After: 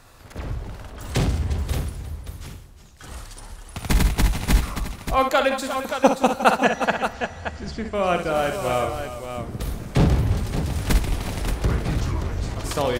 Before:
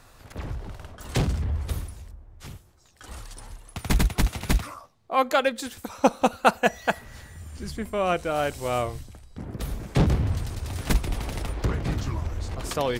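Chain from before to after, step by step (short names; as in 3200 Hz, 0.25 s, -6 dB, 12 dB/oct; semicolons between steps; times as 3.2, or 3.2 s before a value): 6.55–7.95 LPF 6700 Hz 24 dB/oct; tapped delay 45/63/173/352/357/577 ms -12/-8.5/-18/-18.5/-14.5/-8 dB; reverb RT60 3.8 s, pre-delay 8 ms, DRR 18 dB; gain +2 dB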